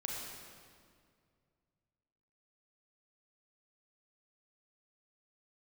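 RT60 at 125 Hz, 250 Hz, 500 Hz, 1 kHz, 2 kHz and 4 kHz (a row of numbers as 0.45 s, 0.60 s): 3.1 s, 2.5 s, 2.3 s, 2.0 s, 1.8 s, 1.6 s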